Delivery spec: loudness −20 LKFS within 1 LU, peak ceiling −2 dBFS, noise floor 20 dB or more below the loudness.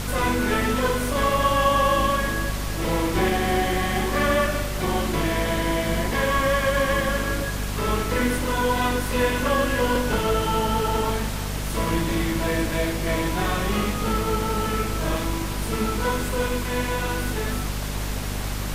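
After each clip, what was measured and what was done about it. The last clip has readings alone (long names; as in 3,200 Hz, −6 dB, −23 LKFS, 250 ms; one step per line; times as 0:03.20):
mains hum 50 Hz; hum harmonics up to 250 Hz; level of the hum −26 dBFS; background noise floor −28 dBFS; target noise floor −44 dBFS; integrated loudness −23.5 LKFS; sample peak −8.5 dBFS; target loudness −20.0 LKFS
→ mains-hum notches 50/100/150/200/250 Hz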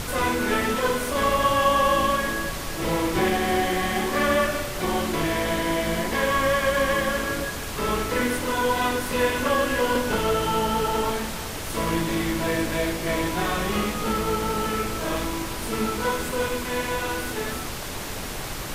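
mains hum none found; background noise floor −32 dBFS; target noise floor −45 dBFS
→ noise reduction from a noise print 13 dB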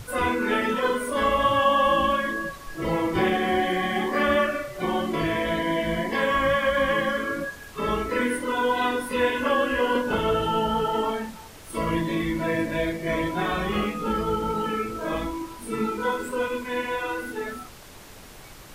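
background noise floor −44 dBFS; target noise floor −45 dBFS
→ noise reduction from a noise print 6 dB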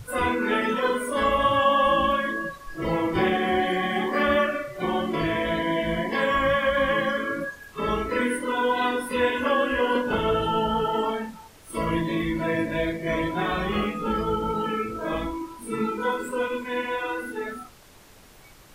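background noise floor −50 dBFS; integrated loudness −25.0 LKFS; sample peak −9.5 dBFS; target loudness −20.0 LKFS
→ level +5 dB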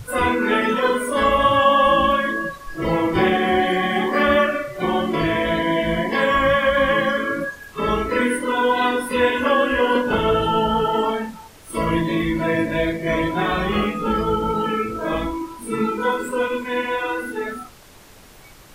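integrated loudness −20.0 LKFS; sample peak −4.5 dBFS; background noise floor −45 dBFS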